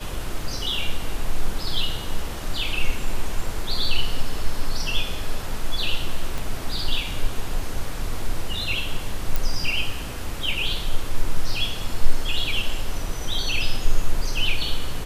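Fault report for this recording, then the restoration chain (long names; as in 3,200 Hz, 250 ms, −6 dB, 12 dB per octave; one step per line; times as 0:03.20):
0:06.38: click
0:09.36: click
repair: click removal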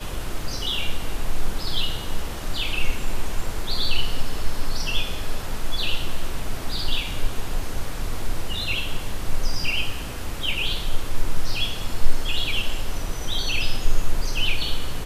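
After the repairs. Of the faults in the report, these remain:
0:06.38: click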